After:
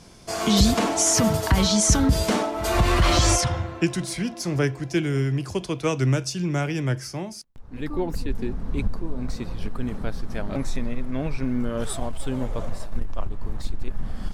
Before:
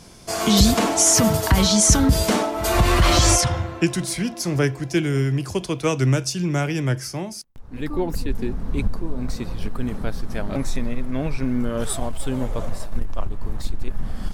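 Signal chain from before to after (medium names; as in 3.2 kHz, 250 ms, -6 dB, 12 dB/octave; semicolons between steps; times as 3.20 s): treble shelf 11 kHz -9 dB; trim -2.5 dB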